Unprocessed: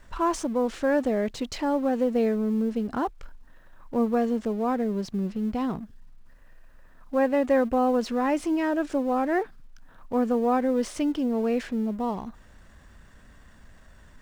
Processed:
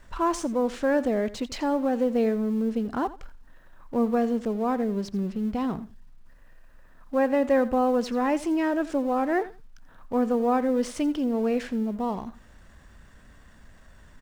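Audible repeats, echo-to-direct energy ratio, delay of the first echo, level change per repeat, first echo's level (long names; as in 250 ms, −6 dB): 2, −17.0 dB, 85 ms, −15.5 dB, −17.0 dB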